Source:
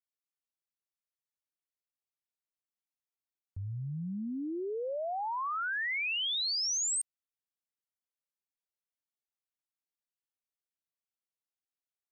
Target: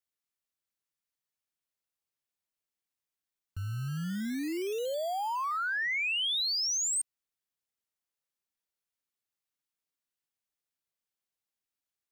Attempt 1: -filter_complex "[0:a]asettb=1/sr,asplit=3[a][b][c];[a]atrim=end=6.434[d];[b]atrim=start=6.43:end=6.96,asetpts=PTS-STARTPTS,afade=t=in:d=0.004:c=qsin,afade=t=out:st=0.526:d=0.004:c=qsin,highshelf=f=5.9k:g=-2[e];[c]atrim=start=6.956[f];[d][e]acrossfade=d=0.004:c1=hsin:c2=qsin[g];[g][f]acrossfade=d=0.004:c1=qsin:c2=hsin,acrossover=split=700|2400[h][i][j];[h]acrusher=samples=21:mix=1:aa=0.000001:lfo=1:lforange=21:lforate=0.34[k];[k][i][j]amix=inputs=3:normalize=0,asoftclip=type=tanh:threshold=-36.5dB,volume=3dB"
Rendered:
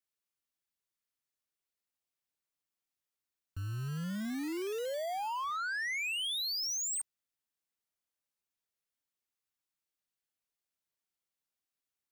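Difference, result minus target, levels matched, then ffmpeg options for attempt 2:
soft clip: distortion +16 dB
-filter_complex "[0:a]asettb=1/sr,asplit=3[a][b][c];[a]atrim=end=6.434[d];[b]atrim=start=6.43:end=6.96,asetpts=PTS-STARTPTS,afade=t=in:d=0.004:c=qsin,afade=t=out:st=0.526:d=0.004:c=qsin,highshelf=f=5.9k:g=-2[e];[c]atrim=start=6.956[f];[d][e]acrossfade=d=0.004:c1=hsin:c2=qsin[g];[g][f]acrossfade=d=0.004:c1=qsin:c2=hsin,acrossover=split=700|2400[h][i][j];[h]acrusher=samples=21:mix=1:aa=0.000001:lfo=1:lforange=21:lforate=0.34[k];[k][i][j]amix=inputs=3:normalize=0,asoftclip=type=tanh:threshold=-25.5dB,volume=3dB"

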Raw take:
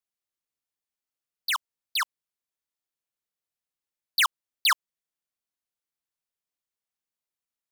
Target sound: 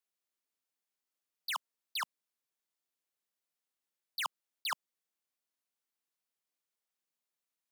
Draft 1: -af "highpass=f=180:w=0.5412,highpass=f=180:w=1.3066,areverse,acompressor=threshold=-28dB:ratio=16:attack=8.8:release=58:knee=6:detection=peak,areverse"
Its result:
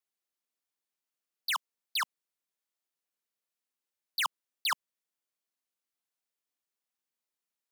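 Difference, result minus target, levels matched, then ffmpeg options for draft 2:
compressor: peak gain reduction -6 dB
-af "highpass=f=180:w=0.5412,highpass=f=180:w=1.3066,areverse,acompressor=threshold=-34.5dB:ratio=16:attack=8.8:release=58:knee=6:detection=peak,areverse"

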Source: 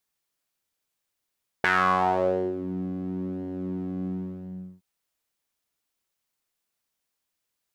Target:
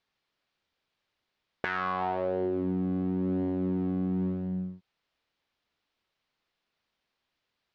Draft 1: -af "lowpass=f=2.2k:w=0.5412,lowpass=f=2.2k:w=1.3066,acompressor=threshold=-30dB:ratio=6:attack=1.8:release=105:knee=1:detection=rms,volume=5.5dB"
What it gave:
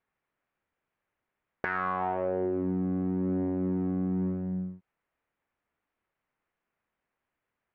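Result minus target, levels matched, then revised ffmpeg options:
4000 Hz band -10.5 dB
-af "lowpass=f=4.4k:w=0.5412,lowpass=f=4.4k:w=1.3066,acompressor=threshold=-30dB:ratio=6:attack=1.8:release=105:knee=1:detection=rms,volume=5.5dB"

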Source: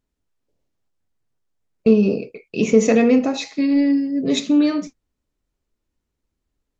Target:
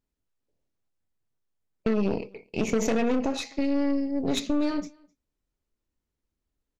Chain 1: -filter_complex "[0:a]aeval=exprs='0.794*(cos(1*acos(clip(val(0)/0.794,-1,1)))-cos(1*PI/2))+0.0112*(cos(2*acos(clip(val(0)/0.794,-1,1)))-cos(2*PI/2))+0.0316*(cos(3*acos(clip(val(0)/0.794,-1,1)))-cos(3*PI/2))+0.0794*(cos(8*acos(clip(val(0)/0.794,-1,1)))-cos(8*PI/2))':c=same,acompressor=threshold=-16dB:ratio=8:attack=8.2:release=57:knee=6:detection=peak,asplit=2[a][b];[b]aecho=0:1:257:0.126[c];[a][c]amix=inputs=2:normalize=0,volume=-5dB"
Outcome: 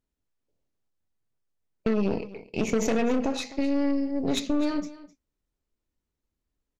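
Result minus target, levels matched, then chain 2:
echo-to-direct +10.5 dB
-filter_complex "[0:a]aeval=exprs='0.794*(cos(1*acos(clip(val(0)/0.794,-1,1)))-cos(1*PI/2))+0.0112*(cos(2*acos(clip(val(0)/0.794,-1,1)))-cos(2*PI/2))+0.0316*(cos(3*acos(clip(val(0)/0.794,-1,1)))-cos(3*PI/2))+0.0794*(cos(8*acos(clip(val(0)/0.794,-1,1)))-cos(8*PI/2))':c=same,acompressor=threshold=-16dB:ratio=8:attack=8.2:release=57:knee=6:detection=peak,asplit=2[a][b];[b]aecho=0:1:257:0.0376[c];[a][c]amix=inputs=2:normalize=0,volume=-5dB"

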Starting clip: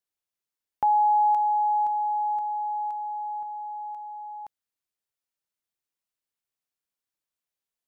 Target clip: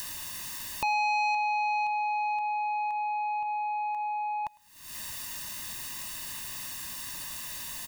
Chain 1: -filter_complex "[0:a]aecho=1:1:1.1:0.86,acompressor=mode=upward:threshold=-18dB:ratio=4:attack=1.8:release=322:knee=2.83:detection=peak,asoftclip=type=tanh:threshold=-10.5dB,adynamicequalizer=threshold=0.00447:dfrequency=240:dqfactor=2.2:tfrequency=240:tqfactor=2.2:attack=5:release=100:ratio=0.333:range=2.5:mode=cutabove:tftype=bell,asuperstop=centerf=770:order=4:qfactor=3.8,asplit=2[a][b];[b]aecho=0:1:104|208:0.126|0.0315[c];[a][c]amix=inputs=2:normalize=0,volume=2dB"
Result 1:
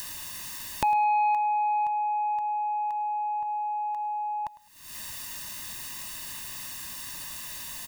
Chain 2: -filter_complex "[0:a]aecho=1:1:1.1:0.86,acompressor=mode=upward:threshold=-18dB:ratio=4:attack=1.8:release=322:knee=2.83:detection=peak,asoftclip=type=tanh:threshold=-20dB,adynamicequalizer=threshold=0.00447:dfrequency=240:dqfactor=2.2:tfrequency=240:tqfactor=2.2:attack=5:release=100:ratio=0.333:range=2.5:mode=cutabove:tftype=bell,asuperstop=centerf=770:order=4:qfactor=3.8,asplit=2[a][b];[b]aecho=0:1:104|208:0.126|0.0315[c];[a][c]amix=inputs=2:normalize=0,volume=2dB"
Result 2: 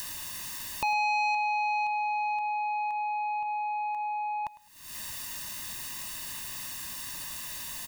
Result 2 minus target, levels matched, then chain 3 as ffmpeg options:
echo-to-direct +7 dB
-filter_complex "[0:a]aecho=1:1:1.1:0.86,acompressor=mode=upward:threshold=-18dB:ratio=4:attack=1.8:release=322:knee=2.83:detection=peak,asoftclip=type=tanh:threshold=-20dB,adynamicequalizer=threshold=0.00447:dfrequency=240:dqfactor=2.2:tfrequency=240:tqfactor=2.2:attack=5:release=100:ratio=0.333:range=2.5:mode=cutabove:tftype=bell,asuperstop=centerf=770:order=4:qfactor=3.8,asplit=2[a][b];[b]aecho=0:1:104|208:0.0562|0.0141[c];[a][c]amix=inputs=2:normalize=0,volume=2dB"

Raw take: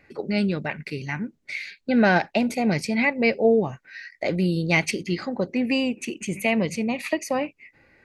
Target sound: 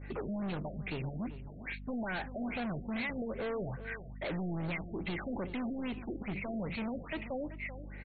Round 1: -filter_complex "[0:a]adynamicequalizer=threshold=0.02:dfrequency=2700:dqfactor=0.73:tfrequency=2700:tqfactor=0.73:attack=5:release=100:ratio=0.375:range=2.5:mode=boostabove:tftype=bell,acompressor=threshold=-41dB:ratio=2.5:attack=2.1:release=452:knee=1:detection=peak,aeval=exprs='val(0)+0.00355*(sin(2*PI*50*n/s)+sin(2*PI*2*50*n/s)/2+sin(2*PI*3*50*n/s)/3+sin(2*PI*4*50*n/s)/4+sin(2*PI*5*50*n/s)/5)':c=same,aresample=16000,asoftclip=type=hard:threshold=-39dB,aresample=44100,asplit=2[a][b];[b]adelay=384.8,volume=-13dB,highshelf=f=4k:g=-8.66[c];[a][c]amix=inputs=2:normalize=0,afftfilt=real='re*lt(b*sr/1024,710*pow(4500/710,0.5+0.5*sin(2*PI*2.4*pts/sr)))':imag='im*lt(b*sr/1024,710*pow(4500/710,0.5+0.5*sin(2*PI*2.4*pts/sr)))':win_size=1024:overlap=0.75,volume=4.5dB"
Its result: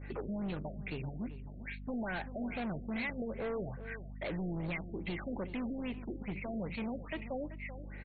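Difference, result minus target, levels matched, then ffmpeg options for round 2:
compressor: peak gain reduction +5.5 dB
-filter_complex "[0:a]adynamicequalizer=threshold=0.02:dfrequency=2700:dqfactor=0.73:tfrequency=2700:tqfactor=0.73:attack=5:release=100:ratio=0.375:range=2.5:mode=boostabove:tftype=bell,acompressor=threshold=-32dB:ratio=2.5:attack=2.1:release=452:knee=1:detection=peak,aeval=exprs='val(0)+0.00355*(sin(2*PI*50*n/s)+sin(2*PI*2*50*n/s)/2+sin(2*PI*3*50*n/s)/3+sin(2*PI*4*50*n/s)/4+sin(2*PI*5*50*n/s)/5)':c=same,aresample=16000,asoftclip=type=hard:threshold=-39dB,aresample=44100,asplit=2[a][b];[b]adelay=384.8,volume=-13dB,highshelf=f=4k:g=-8.66[c];[a][c]amix=inputs=2:normalize=0,afftfilt=real='re*lt(b*sr/1024,710*pow(4500/710,0.5+0.5*sin(2*PI*2.4*pts/sr)))':imag='im*lt(b*sr/1024,710*pow(4500/710,0.5+0.5*sin(2*PI*2.4*pts/sr)))':win_size=1024:overlap=0.75,volume=4.5dB"

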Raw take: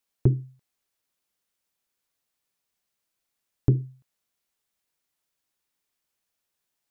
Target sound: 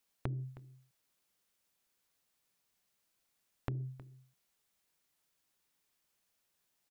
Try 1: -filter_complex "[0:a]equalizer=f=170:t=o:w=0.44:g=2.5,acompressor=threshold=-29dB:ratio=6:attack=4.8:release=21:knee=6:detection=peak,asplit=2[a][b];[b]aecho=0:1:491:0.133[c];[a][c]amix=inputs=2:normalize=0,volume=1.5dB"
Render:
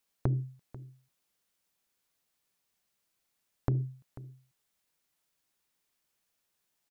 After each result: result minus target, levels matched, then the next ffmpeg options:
echo 0.176 s late; compressor: peak gain reduction -9.5 dB
-filter_complex "[0:a]equalizer=f=170:t=o:w=0.44:g=2.5,acompressor=threshold=-29dB:ratio=6:attack=4.8:release=21:knee=6:detection=peak,asplit=2[a][b];[b]aecho=0:1:315:0.133[c];[a][c]amix=inputs=2:normalize=0,volume=1.5dB"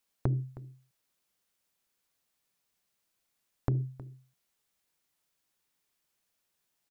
compressor: peak gain reduction -9.5 dB
-filter_complex "[0:a]equalizer=f=170:t=o:w=0.44:g=2.5,acompressor=threshold=-40.5dB:ratio=6:attack=4.8:release=21:knee=6:detection=peak,asplit=2[a][b];[b]aecho=0:1:315:0.133[c];[a][c]amix=inputs=2:normalize=0,volume=1.5dB"

